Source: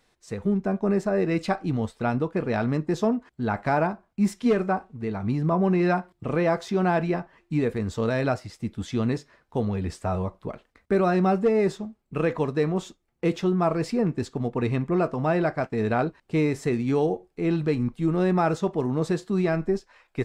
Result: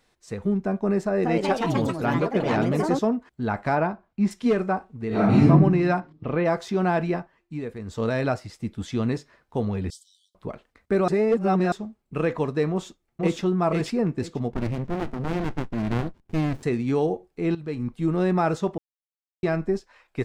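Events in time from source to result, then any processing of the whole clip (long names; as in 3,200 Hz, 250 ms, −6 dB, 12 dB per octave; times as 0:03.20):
0:01.04–0:03.13: delay with pitch and tempo change per echo 192 ms, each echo +3 semitones, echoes 3
0:03.75–0:04.31: low-pass filter 4,500 Hz
0:05.08–0:05.48: thrown reverb, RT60 0.87 s, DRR −12 dB
0:06.00–0:06.44: low-pass filter 7,100 Hz → 3,500 Hz 24 dB per octave
0:07.16–0:08.03: duck −8 dB, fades 0.19 s
0:09.90–0:10.35: linear-phase brick-wall high-pass 3,000 Hz
0:11.08–0:11.72: reverse
0:12.70–0:13.41: delay throw 490 ms, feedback 15%, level −1 dB
0:14.51–0:16.63: windowed peak hold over 65 samples
0:17.55–0:18.01: fade in, from −14.5 dB
0:18.78–0:19.43: silence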